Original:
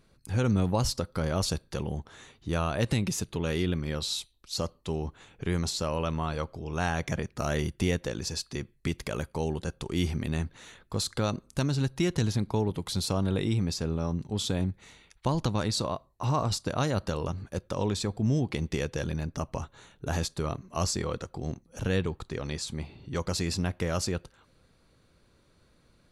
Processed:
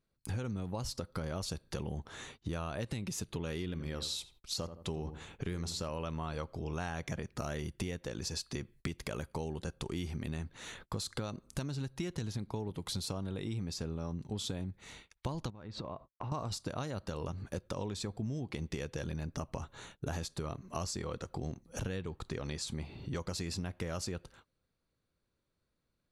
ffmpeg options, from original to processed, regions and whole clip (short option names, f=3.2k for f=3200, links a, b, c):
-filter_complex "[0:a]asettb=1/sr,asplit=3[a][b][c];[a]atrim=end=3.614[d];[b]atrim=start=3.61:end=5.9,asetpts=PTS-STARTPTS,afade=t=in:d=0.004:c=qsin,afade=t=out:st=2.286:d=0.004:c=qsin,asoftclip=type=hard:threshold=-20dB,asplit=2[e][f];[f]adelay=82,lowpass=f=1.2k:p=1,volume=-11dB,asplit=2[g][h];[h]adelay=82,lowpass=f=1.2k:p=1,volume=0.29,asplit=2[i][j];[j]adelay=82,lowpass=f=1.2k:p=1,volume=0.29[k];[e][g][i][k]amix=inputs=4:normalize=0,atrim=end_sample=100989[l];[c]atrim=start=5.896[m];[d][l]acrossfade=d=0.004:c1=hsin:c2=qsin[n];[n][m]acrossfade=d=0.004:c1=qsin:c2=hsin,asettb=1/sr,asplit=3[o][p][q];[o]atrim=end=15.504[r];[p]atrim=start=15.5:end=16.32,asetpts=PTS-STARTPTS,afade=t=in:d=0.004:c=qsin,afade=t=out:st=0.816:d=0.004:c=qsin,lowpass=2.2k,agate=range=-33dB:threshold=-56dB:ratio=3:release=100:detection=peak,acompressor=threshold=-40dB:ratio=6:attack=3.2:release=140:knee=1:detection=peak[s];[q]atrim=start=16.316[t];[r][s]acrossfade=d=0.004:c1=hsin:c2=qsin[u];[u][t]acrossfade=d=0.004:c1=qsin:c2=hsin,agate=range=-23dB:threshold=-55dB:ratio=16:detection=peak,acompressor=threshold=-39dB:ratio=6,volume=3.5dB"